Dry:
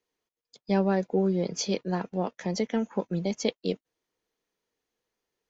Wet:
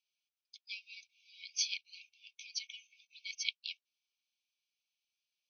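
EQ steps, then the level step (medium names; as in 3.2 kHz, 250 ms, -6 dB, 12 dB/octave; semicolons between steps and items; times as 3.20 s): brick-wall FIR band-pass 2.2–6.4 kHz; tilt EQ -2.5 dB/octave; +5.0 dB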